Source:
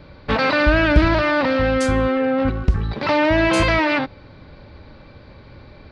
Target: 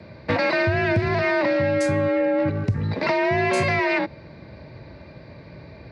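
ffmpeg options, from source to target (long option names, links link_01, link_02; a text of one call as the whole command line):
ffmpeg -i in.wav -af "equalizer=frequency=500:width_type=o:width=0.33:gain=4,equalizer=frequency=1250:width_type=o:width=0.33:gain=-7,equalizer=frequency=2000:width_type=o:width=0.33:gain=5,equalizer=frequency=3150:width_type=o:width=0.33:gain=-8,acompressor=threshold=-18dB:ratio=6,afreqshift=46" out.wav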